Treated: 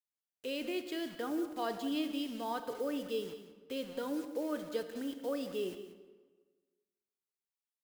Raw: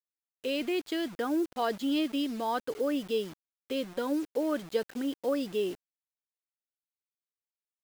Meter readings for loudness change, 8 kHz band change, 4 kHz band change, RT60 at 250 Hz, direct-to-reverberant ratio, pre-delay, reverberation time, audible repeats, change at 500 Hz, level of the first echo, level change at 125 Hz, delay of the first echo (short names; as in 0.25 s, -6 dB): -6.0 dB, -4.0 dB, -5.5 dB, 1.4 s, 7.5 dB, 24 ms, 1.4 s, 1, -6.0 dB, -13.5 dB, -6.0 dB, 0.183 s